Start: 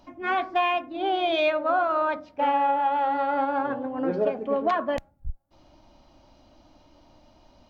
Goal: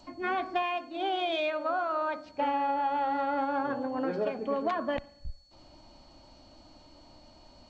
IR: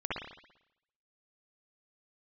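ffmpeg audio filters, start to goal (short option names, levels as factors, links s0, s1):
-filter_complex "[0:a]asettb=1/sr,asplit=3[s0][s1][s2];[s0]atrim=end=0.624[s3];[s1]atrim=start=0.62:end=2.26,asetpts=PTS-STARTPTS,afade=t=in:d=0.004:c=qsin,afade=t=out:st=1.636:d=0.004:c=qsin,lowshelf=f=290:g=-11.5[s4];[s2]atrim=start=2.256[s5];[s3][s4]acrossfade=d=0.004:c1=hsin:c2=qsin[s6];[s6][s5]acrossfade=d=0.004:c1=qsin:c2=hsin,acrossover=split=380|900[s7][s8][s9];[s7]acompressor=threshold=0.0178:ratio=4[s10];[s8]acompressor=threshold=0.0178:ratio=4[s11];[s9]acompressor=threshold=0.02:ratio=4[s12];[s10][s11][s12]amix=inputs=3:normalize=0,aeval=exprs='val(0)+0.000891*sin(2*PI*4400*n/s)':c=same,asplit=2[s13][s14];[1:a]atrim=start_sample=2205[s15];[s14][s15]afir=irnorm=-1:irlink=0,volume=0.0447[s16];[s13][s16]amix=inputs=2:normalize=0" -ar 16000 -c:a g722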